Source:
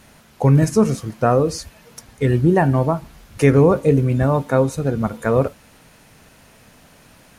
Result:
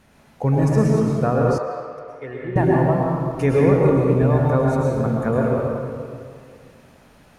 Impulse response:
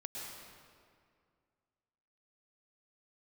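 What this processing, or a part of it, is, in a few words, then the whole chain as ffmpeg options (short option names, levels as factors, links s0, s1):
swimming-pool hall: -filter_complex "[1:a]atrim=start_sample=2205[s0];[0:a][s0]afir=irnorm=-1:irlink=0,highshelf=f=3400:g=-8,asettb=1/sr,asplit=3[s1][s2][s3];[s1]atrim=end=1.584[s4];[s2]atrim=start=1.58:end=2.56,asetpts=PTS-STARTPTS,afade=t=in:d=0.004:c=qsin,afade=t=out:st=0.976:d=0.004:c=qsin,acrossover=split=500 2700:gain=0.126 1 0.1[s5][s6][s7];[s5][s6][s7]amix=inputs=3:normalize=0[s8];[s3]atrim=start=2.556[s9];[s4][s8]acrossfade=d=0.004:c1=hsin:c2=qsin[s10];[s10][s9]acrossfade=d=0.004:c1=qsin:c2=hsin"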